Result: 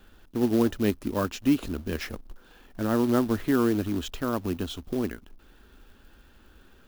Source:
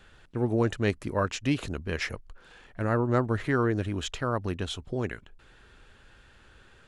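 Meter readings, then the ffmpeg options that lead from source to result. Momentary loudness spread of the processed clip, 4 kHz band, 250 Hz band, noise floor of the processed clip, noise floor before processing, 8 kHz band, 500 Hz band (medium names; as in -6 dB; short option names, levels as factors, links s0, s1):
11 LU, -1.0 dB, +5.5 dB, -56 dBFS, -57 dBFS, +0.5 dB, +0.5 dB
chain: -af "acrusher=bits=3:mode=log:mix=0:aa=0.000001,equalizer=f=125:t=o:w=1:g=-11,equalizer=f=250:t=o:w=1:g=6,equalizer=f=500:t=o:w=1:g=-5,equalizer=f=1000:t=o:w=1:g=-3,equalizer=f=2000:t=o:w=1:g=-9,equalizer=f=4000:t=o:w=1:g=-3,equalizer=f=8000:t=o:w=1:g=-8,volume=1.58"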